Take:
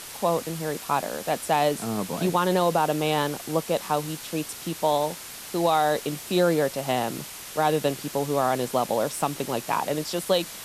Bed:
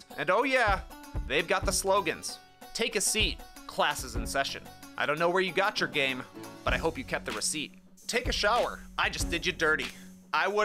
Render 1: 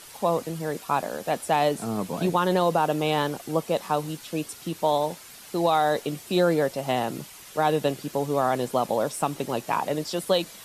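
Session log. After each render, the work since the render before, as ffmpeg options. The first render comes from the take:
ffmpeg -i in.wav -af "afftdn=noise_reduction=8:noise_floor=-40" out.wav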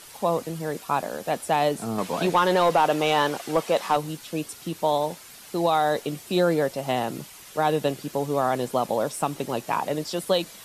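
ffmpeg -i in.wav -filter_complex "[0:a]asettb=1/sr,asplit=3[link_01][link_02][link_03];[link_01]atrim=end=1.984[link_04];[link_02]atrim=start=1.98:end=3.97,asetpts=PTS-STARTPTS,afade=type=in:duration=0.004:curve=qsin,afade=type=out:start_time=1.986:duration=0.004:curve=qsin,asplit=2[link_05][link_06];[link_06]highpass=frequency=720:poles=1,volume=13dB,asoftclip=type=tanh:threshold=-9.5dB[link_07];[link_05][link_07]amix=inputs=2:normalize=0,lowpass=frequency=4800:poles=1,volume=-6dB[link_08];[link_03]atrim=start=3.966[link_09];[link_04][link_08]acrossfade=duration=0.004:curve1=hsin:curve2=qsin[link_10];[link_10][link_09]acrossfade=duration=0.004:curve1=qsin:curve2=hsin" out.wav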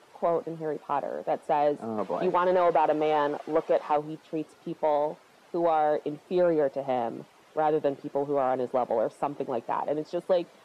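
ffmpeg -i in.wav -af "bandpass=frequency=520:width_type=q:width=0.8:csg=0,asoftclip=type=tanh:threshold=-13.5dB" out.wav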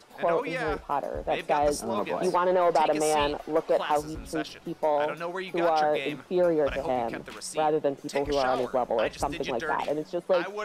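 ffmpeg -i in.wav -i bed.wav -filter_complex "[1:a]volume=-7dB[link_01];[0:a][link_01]amix=inputs=2:normalize=0" out.wav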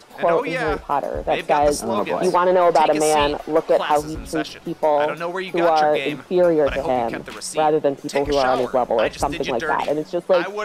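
ffmpeg -i in.wav -af "volume=7.5dB" out.wav

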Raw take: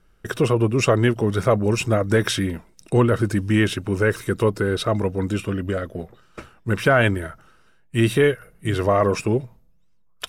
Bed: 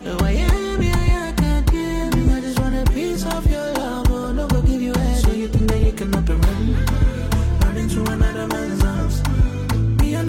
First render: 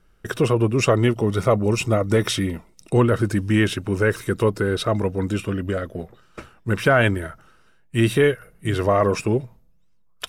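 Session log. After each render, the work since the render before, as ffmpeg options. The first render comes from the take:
ffmpeg -i in.wav -filter_complex "[0:a]asettb=1/sr,asplit=3[link_01][link_02][link_03];[link_01]atrim=end=0.924[link_04];[link_02]atrim=start=0.92:end=2.98,asetpts=PTS-STARTPTS,afade=type=in:duration=0.004:curve=qsin,afade=type=out:start_time=2.056:duration=0.004:curve=qsin,asuperstop=centerf=1600:order=4:qfactor=6.8[link_05];[link_03]atrim=start=2.976[link_06];[link_04][link_05]acrossfade=duration=0.004:curve1=hsin:curve2=qsin[link_07];[link_07][link_06]acrossfade=duration=0.004:curve1=qsin:curve2=hsin" out.wav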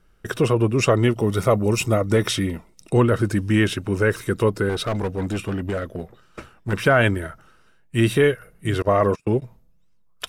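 ffmpeg -i in.wav -filter_complex "[0:a]asettb=1/sr,asplit=3[link_01][link_02][link_03];[link_01]atrim=end=1.194[link_04];[link_02]atrim=start=1.19:end=2.01,asetpts=PTS-STARTPTS,afade=type=in:duration=0.004:curve=qsin,afade=type=out:start_time=0.816:duration=0.004:curve=qsin,highshelf=frequency=11000:gain=12[link_05];[link_03]atrim=start=2.006[link_06];[link_04][link_05]acrossfade=duration=0.004:curve1=hsin:curve2=qsin[link_07];[link_07][link_06]acrossfade=duration=0.004:curve1=qsin:curve2=hsin,asettb=1/sr,asplit=3[link_08][link_09][link_10];[link_08]atrim=end=4.694[link_11];[link_09]atrim=start=4.69:end=6.73,asetpts=PTS-STARTPTS,afade=type=in:duration=0.004:curve=qsin,afade=type=out:start_time=2.036:duration=0.004:curve=qsin,asoftclip=type=hard:threshold=-20dB[link_12];[link_10]atrim=start=6.726[link_13];[link_11][link_12]acrossfade=duration=0.004:curve1=hsin:curve2=qsin[link_14];[link_14][link_13]acrossfade=duration=0.004:curve1=qsin:curve2=hsin,asettb=1/sr,asplit=3[link_15][link_16][link_17];[link_15]atrim=end=8.824[link_18];[link_16]atrim=start=8.82:end=9.42,asetpts=PTS-STARTPTS,afade=type=in:duration=0.004:curve=qsin,afade=type=out:start_time=0.596:duration=0.004:curve=qsin,agate=range=-30dB:threshold=-24dB:ratio=16:release=100:detection=peak[link_19];[link_17]atrim=start=9.416[link_20];[link_18][link_19]acrossfade=duration=0.004:curve1=hsin:curve2=qsin[link_21];[link_21][link_20]acrossfade=duration=0.004:curve1=qsin:curve2=hsin" out.wav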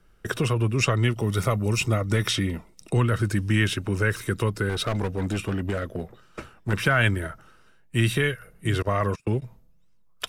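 ffmpeg -i in.wav -filter_complex "[0:a]acrossover=split=170|1200|6600[link_01][link_02][link_03][link_04];[link_02]acompressor=threshold=-27dB:ratio=6[link_05];[link_04]alimiter=level_in=3dB:limit=-24dB:level=0:latency=1:release=407,volume=-3dB[link_06];[link_01][link_05][link_03][link_06]amix=inputs=4:normalize=0" out.wav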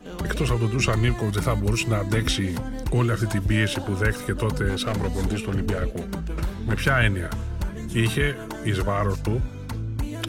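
ffmpeg -i in.wav -i bed.wav -filter_complex "[1:a]volume=-11.5dB[link_01];[0:a][link_01]amix=inputs=2:normalize=0" out.wav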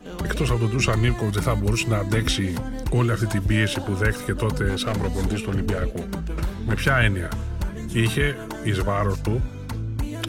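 ffmpeg -i in.wav -af "volume=1dB" out.wav

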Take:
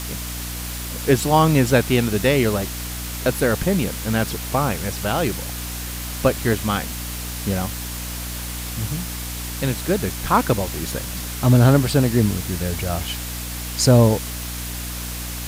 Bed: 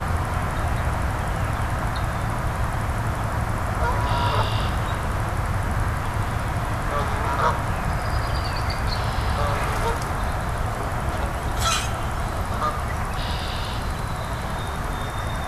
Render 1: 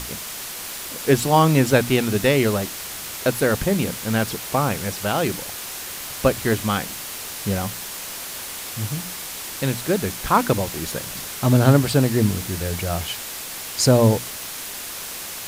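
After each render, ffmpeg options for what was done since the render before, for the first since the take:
ffmpeg -i in.wav -af "bandreject=frequency=60:width_type=h:width=6,bandreject=frequency=120:width_type=h:width=6,bandreject=frequency=180:width_type=h:width=6,bandreject=frequency=240:width_type=h:width=6,bandreject=frequency=300:width_type=h:width=6" out.wav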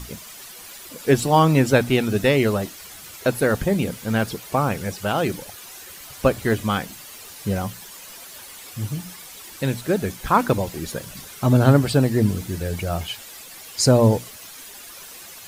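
ffmpeg -i in.wav -af "afftdn=noise_reduction=11:noise_floor=-33" out.wav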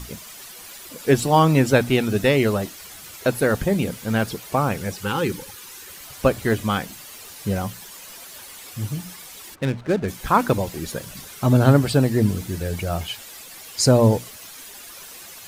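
ffmpeg -i in.wav -filter_complex "[0:a]asettb=1/sr,asplit=3[link_01][link_02][link_03];[link_01]atrim=end=5.034[link_04];[link_02]atrim=start=5.03:end=5.88,asetpts=PTS-STARTPTS,afade=type=in:duration=0.004:curve=qsin,afade=type=out:start_time=0.846:duration=0.004:curve=qsin,asuperstop=centerf=660:order=12:qfactor=2.8[link_05];[link_03]atrim=start=5.876[link_06];[link_04][link_05]acrossfade=duration=0.004:curve1=hsin:curve2=qsin[link_07];[link_07][link_06]acrossfade=duration=0.004:curve1=qsin:curve2=hsin,asplit=3[link_08][link_09][link_10];[link_08]afade=type=out:start_time=9.54:duration=0.02[link_11];[link_09]adynamicsmooth=sensitivity=7:basefreq=730,afade=type=in:start_time=9.54:duration=0.02,afade=type=out:start_time=10.07:duration=0.02[link_12];[link_10]afade=type=in:start_time=10.07:duration=0.02[link_13];[link_11][link_12][link_13]amix=inputs=3:normalize=0" out.wav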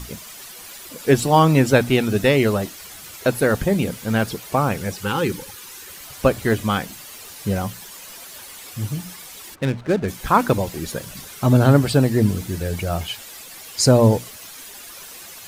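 ffmpeg -i in.wav -af "volume=1.5dB,alimiter=limit=-3dB:level=0:latency=1" out.wav

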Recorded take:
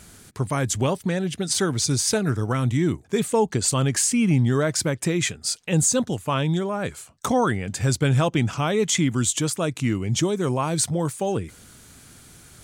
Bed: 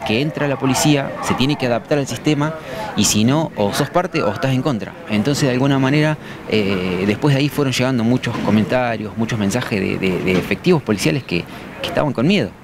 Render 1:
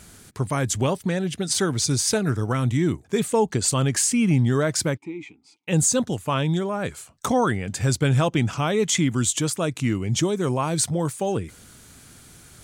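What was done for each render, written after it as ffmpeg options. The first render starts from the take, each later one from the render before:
ffmpeg -i in.wav -filter_complex "[0:a]asplit=3[link_01][link_02][link_03];[link_01]afade=type=out:start_time=4.96:duration=0.02[link_04];[link_02]asplit=3[link_05][link_06][link_07];[link_05]bandpass=frequency=300:width_type=q:width=8,volume=0dB[link_08];[link_06]bandpass=frequency=870:width_type=q:width=8,volume=-6dB[link_09];[link_07]bandpass=frequency=2240:width_type=q:width=8,volume=-9dB[link_10];[link_08][link_09][link_10]amix=inputs=3:normalize=0,afade=type=in:start_time=4.96:duration=0.02,afade=type=out:start_time=5.67:duration=0.02[link_11];[link_03]afade=type=in:start_time=5.67:duration=0.02[link_12];[link_04][link_11][link_12]amix=inputs=3:normalize=0" out.wav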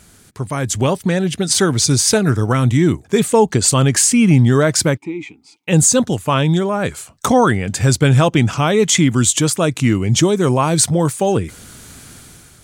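ffmpeg -i in.wav -af "dynaudnorm=framelen=290:gausssize=5:maxgain=11dB" out.wav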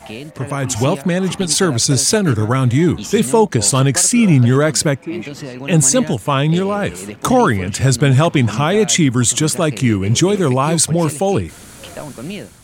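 ffmpeg -i in.wav -i bed.wav -filter_complex "[1:a]volume=-13dB[link_01];[0:a][link_01]amix=inputs=2:normalize=0" out.wav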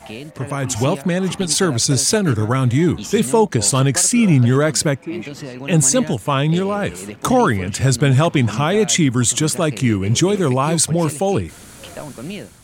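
ffmpeg -i in.wav -af "volume=-2dB" out.wav

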